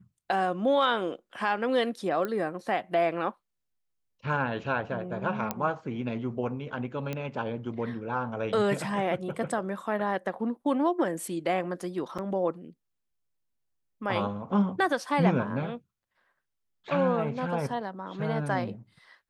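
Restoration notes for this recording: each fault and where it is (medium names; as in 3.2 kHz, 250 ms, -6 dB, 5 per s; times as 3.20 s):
2.25 s: pop -19 dBFS
5.51 s: pop -13 dBFS
7.13 s: pop -19 dBFS
12.18–12.19 s: dropout 6.3 ms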